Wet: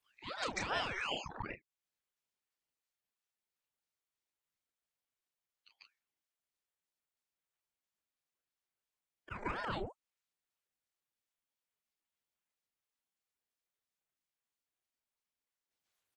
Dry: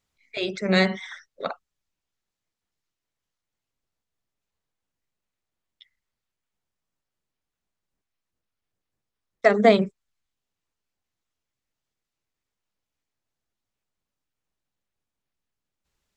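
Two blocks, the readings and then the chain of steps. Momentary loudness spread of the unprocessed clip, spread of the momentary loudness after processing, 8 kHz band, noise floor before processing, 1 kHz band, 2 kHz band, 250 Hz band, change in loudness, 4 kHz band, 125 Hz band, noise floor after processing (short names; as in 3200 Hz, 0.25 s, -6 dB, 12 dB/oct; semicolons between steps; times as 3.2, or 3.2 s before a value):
18 LU, 11 LU, n/a, under -85 dBFS, -12.0 dB, -12.5 dB, -22.5 dB, -18.0 dB, -10.0 dB, -17.5 dB, under -85 dBFS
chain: bin magnitudes rounded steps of 15 dB; spectral noise reduction 15 dB; steep high-pass 170 Hz 48 dB/oct; low shelf 340 Hz -11.5 dB; in parallel at -3 dB: limiter -19 dBFS, peak gain reduction 11.5 dB; on the sum: auto swell 0.561 s; compressor 6:1, threshold -40 dBFS, peak gain reduction 13 dB; LFO notch square 3 Hz 440–5100 Hz; doubler 31 ms -6 dB; on a send: reverse echo 0.144 s -5.5 dB; on the sum: ring modulator with a swept carrier 710 Hz, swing 75%, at 2.6 Hz; gain +7.5 dB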